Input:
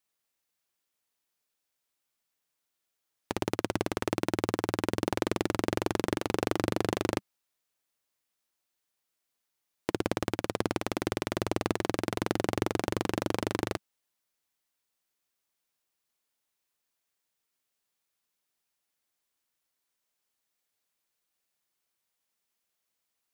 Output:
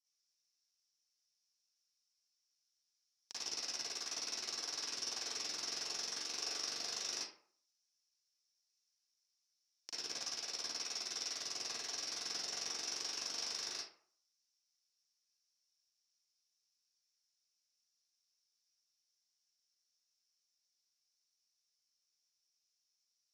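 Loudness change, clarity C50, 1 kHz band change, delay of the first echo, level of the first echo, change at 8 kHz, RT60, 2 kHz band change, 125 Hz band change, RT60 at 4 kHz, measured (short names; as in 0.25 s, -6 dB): -8.0 dB, -2.0 dB, -17.5 dB, none, none, +3.0 dB, 0.50 s, -11.5 dB, under -30 dB, 0.30 s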